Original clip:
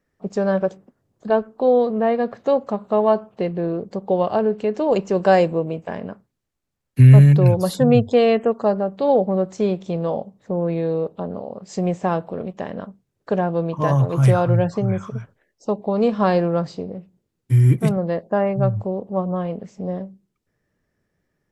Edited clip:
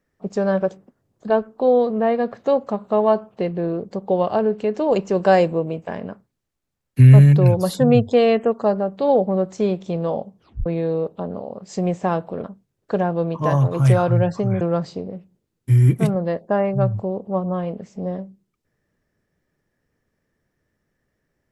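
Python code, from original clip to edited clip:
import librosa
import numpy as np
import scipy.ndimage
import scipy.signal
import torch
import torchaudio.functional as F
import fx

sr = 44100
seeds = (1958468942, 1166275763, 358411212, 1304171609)

y = fx.edit(x, sr, fx.tape_stop(start_s=10.36, length_s=0.3),
    fx.cut(start_s=12.44, length_s=0.38),
    fx.cut(start_s=14.99, length_s=1.44), tone=tone)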